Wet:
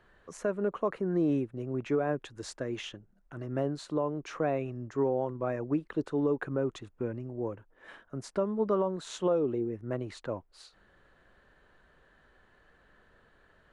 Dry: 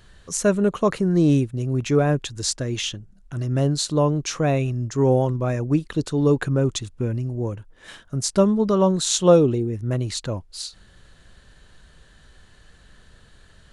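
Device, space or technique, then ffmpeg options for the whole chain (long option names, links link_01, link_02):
DJ mixer with the lows and highs turned down: -filter_complex "[0:a]asettb=1/sr,asplit=3[link_01][link_02][link_03];[link_01]atrim=end=1.934[link_04];[link_02]atrim=start=1.93:end=3.36,asetpts=PTS-STARTPTS,afade=type=in:duration=0.004:curve=qsin,afade=type=out:start_time=1.426:duration=0.004:curve=qsin,highshelf=frequency=5700:gain=5[link_05];[link_03]atrim=start=3.356[link_06];[link_04][link_05]acrossfade=duration=0.004:curve1=hsin:curve2=qsin[link_07];[link_07][link_06]acrossfade=duration=0.004:curve1=qsin:curve2=hsin,acrossover=split=260 2200:gain=0.224 1 0.1[link_08][link_09][link_10];[link_08][link_09][link_10]amix=inputs=3:normalize=0,alimiter=limit=-15.5dB:level=0:latency=1:release=257,volume=-4dB"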